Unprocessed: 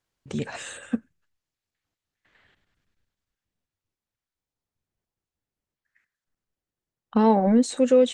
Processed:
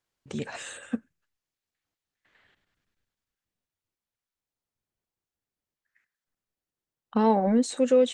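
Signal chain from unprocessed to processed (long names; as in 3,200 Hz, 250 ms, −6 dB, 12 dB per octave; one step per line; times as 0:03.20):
low-shelf EQ 170 Hz −5.5 dB
level −2 dB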